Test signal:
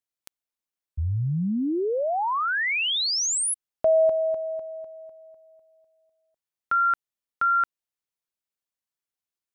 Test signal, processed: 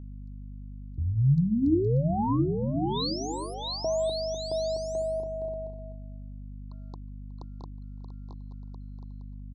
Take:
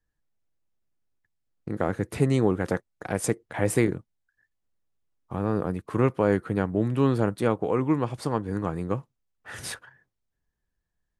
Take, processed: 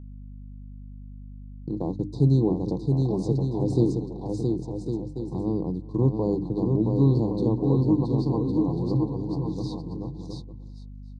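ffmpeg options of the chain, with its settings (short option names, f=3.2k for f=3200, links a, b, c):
-filter_complex "[0:a]lowshelf=f=210:g=7.5,asplit=2[a][b];[b]aecho=0:1:670|1106|1389|1573|1692:0.631|0.398|0.251|0.158|0.1[c];[a][c]amix=inputs=2:normalize=0,agate=range=-33dB:threshold=-34dB:ratio=3:release=50:detection=peak,asuperstop=centerf=2000:order=20:qfactor=0.75,highpass=110,equalizer=f=140:t=q:w=4:g=9,equalizer=f=310:t=q:w=4:g=8,equalizer=f=600:t=q:w=4:g=-7,equalizer=f=1.3k:t=q:w=4:g=-7,equalizer=f=4.3k:t=q:w=4:g=7,lowpass=f=6k:w=0.5412,lowpass=f=6k:w=1.3066,bandreject=f=50:t=h:w=6,bandreject=f=100:t=h:w=6,bandreject=f=150:t=h:w=6,bandreject=f=200:t=h:w=6,bandreject=f=250:t=h:w=6,bandreject=f=300:t=h:w=6,asplit=2[d][e];[e]adelay=367.3,volume=-24dB,highshelf=f=4k:g=-8.27[f];[d][f]amix=inputs=2:normalize=0,asplit=2[g][h];[h]acompressor=threshold=-28dB:ratio=6:attack=0.43:release=378:knee=6:detection=rms,volume=-1.5dB[i];[g][i]amix=inputs=2:normalize=0,aeval=exprs='val(0)+0.0224*(sin(2*PI*50*n/s)+sin(2*PI*2*50*n/s)/2+sin(2*PI*3*50*n/s)/3+sin(2*PI*4*50*n/s)/4+sin(2*PI*5*50*n/s)/5)':c=same,acrossover=split=3500[j][k];[k]acompressor=threshold=-39dB:ratio=4:attack=1:release=60[l];[j][l]amix=inputs=2:normalize=0,volume=-6.5dB"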